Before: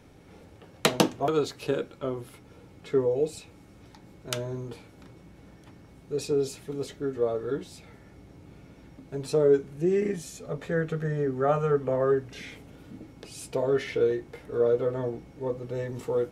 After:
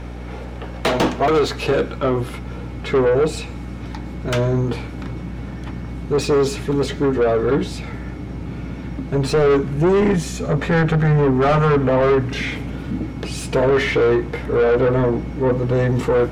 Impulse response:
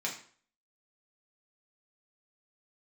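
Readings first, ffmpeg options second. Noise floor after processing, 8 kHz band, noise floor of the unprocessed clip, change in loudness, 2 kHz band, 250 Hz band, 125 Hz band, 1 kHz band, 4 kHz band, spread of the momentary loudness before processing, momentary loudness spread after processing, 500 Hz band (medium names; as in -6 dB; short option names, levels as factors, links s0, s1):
-31 dBFS, +5.5 dB, -53 dBFS, +9.5 dB, +13.5 dB, +12.0 dB, +14.5 dB, +12.0 dB, +8.0 dB, 18 LU, 15 LU, +9.0 dB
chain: -filter_complex "[0:a]asubboost=boost=4.5:cutoff=230,asplit=2[s0][s1];[s1]highpass=f=720:p=1,volume=39.8,asoftclip=type=tanh:threshold=0.596[s2];[s0][s2]amix=inputs=2:normalize=0,lowpass=f=1700:p=1,volume=0.501,aeval=exprs='val(0)+0.0398*(sin(2*PI*60*n/s)+sin(2*PI*2*60*n/s)/2+sin(2*PI*3*60*n/s)/3+sin(2*PI*4*60*n/s)/4+sin(2*PI*5*60*n/s)/5)':c=same,asplit=2[s3][s4];[1:a]atrim=start_sample=2205,adelay=100[s5];[s4][s5]afir=irnorm=-1:irlink=0,volume=0.0596[s6];[s3][s6]amix=inputs=2:normalize=0,volume=0.75"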